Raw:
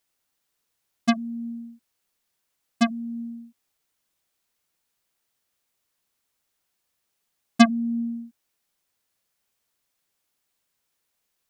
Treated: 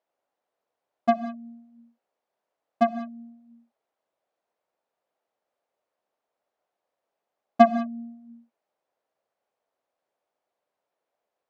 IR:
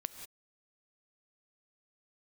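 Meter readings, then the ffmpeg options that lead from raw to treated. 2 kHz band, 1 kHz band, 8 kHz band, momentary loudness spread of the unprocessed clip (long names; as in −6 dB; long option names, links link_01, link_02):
−5.5 dB, +6.5 dB, below −15 dB, 20 LU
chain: -filter_complex "[0:a]bandpass=frequency=620:width_type=q:width=2.3:csg=0,asplit=2[link_01][link_02];[1:a]atrim=start_sample=2205[link_03];[link_02][link_03]afir=irnorm=-1:irlink=0,volume=8dB[link_04];[link_01][link_04]amix=inputs=2:normalize=0"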